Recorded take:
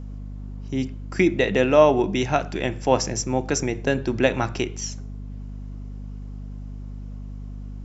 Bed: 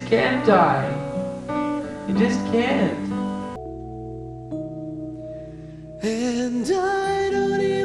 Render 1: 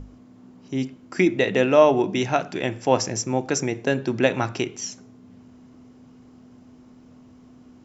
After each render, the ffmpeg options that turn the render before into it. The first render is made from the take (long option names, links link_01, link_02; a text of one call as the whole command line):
ffmpeg -i in.wav -af "bandreject=frequency=50:width_type=h:width=6,bandreject=frequency=100:width_type=h:width=6,bandreject=frequency=150:width_type=h:width=6,bandreject=frequency=200:width_type=h:width=6" out.wav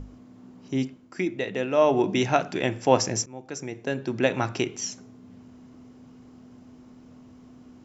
ffmpeg -i in.wav -filter_complex "[0:a]asplit=4[link_01][link_02][link_03][link_04];[link_01]atrim=end=1.12,asetpts=PTS-STARTPTS,afade=type=out:start_time=0.76:duration=0.36:silence=0.375837[link_05];[link_02]atrim=start=1.12:end=1.71,asetpts=PTS-STARTPTS,volume=-8.5dB[link_06];[link_03]atrim=start=1.71:end=3.26,asetpts=PTS-STARTPTS,afade=type=in:duration=0.36:silence=0.375837,afade=type=out:start_time=1.546:duration=0.004:curve=hsin:silence=0.0794328[link_07];[link_04]atrim=start=3.26,asetpts=PTS-STARTPTS,afade=type=in:duration=1.48:silence=0.0794328[link_08];[link_05][link_06][link_07][link_08]concat=n=4:v=0:a=1" out.wav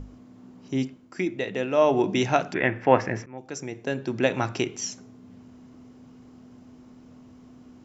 ffmpeg -i in.wav -filter_complex "[0:a]asettb=1/sr,asplit=3[link_01][link_02][link_03];[link_01]atrim=end=2.544[link_04];[link_02]atrim=start=2.54:end=3.38,asetpts=PTS-STARTPTS,afade=type=in:duration=0.004:curve=qsin,afade=type=out:start_time=0.836:duration=0.004:curve=qsin,lowpass=frequency=1900:width_type=q:width=2.9[link_05];[link_03]atrim=start=3.376[link_06];[link_04][link_05]acrossfade=duration=0.004:curve1=hsin:curve2=qsin[link_07];[link_07][link_06]acrossfade=duration=0.004:curve1=qsin:curve2=hsin" out.wav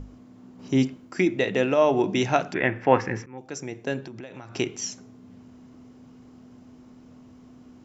ffmpeg -i in.wav -filter_complex "[0:a]asettb=1/sr,asplit=3[link_01][link_02][link_03];[link_01]atrim=end=0.594[link_04];[link_02]atrim=start=0.59:end=1.74,asetpts=PTS-STARTPTS,afade=type=in:duration=0.004:curve=qsin,afade=type=out:start_time=1.146:duration=0.004:curve=qsin,acontrast=35[link_05];[link_03]atrim=start=1.736[link_06];[link_04][link_05]acrossfade=duration=0.004:curve1=hsin:curve2=qsin[link_07];[link_07][link_06]acrossfade=duration=0.004:curve1=qsin:curve2=hsin,asettb=1/sr,asplit=3[link_08][link_09][link_10];[link_08]atrim=end=2.934[link_11];[link_09]atrim=start=2.93:end=3.41,asetpts=PTS-STARTPTS,afade=type=in:duration=0.004:curve=qsin,afade=type=out:start_time=0.476:duration=0.004:curve=qsin,asuperstop=centerf=640:order=4:qfactor=3.7[link_12];[link_10]atrim=start=3.406[link_13];[link_11][link_12]acrossfade=duration=0.004:curve1=hsin:curve2=qsin[link_14];[link_14][link_13]acrossfade=duration=0.004:curve1=qsin:curve2=hsin,asettb=1/sr,asplit=3[link_15][link_16][link_17];[link_15]atrim=end=4.004[link_18];[link_16]atrim=start=4:end=4.56,asetpts=PTS-STARTPTS,afade=type=in:duration=0.004:curve=qsin,afade=type=out:start_time=0.556:duration=0.004:curve=qsin,acompressor=threshold=-36dB:ratio=10:attack=3.2:release=140:knee=1:detection=peak[link_19];[link_17]atrim=start=4.556[link_20];[link_18][link_19]acrossfade=duration=0.004:curve1=hsin:curve2=qsin[link_21];[link_21][link_20]acrossfade=duration=0.004:curve1=qsin:curve2=hsin" out.wav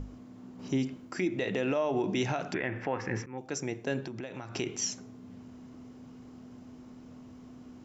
ffmpeg -i in.wav -af "acompressor=threshold=-22dB:ratio=5,alimiter=limit=-20dB:level=0:latency=1:release=66" out.wav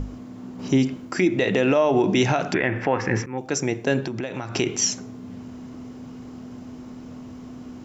ffmpeg -i in.wav -af "volume=10.5dB" out.wav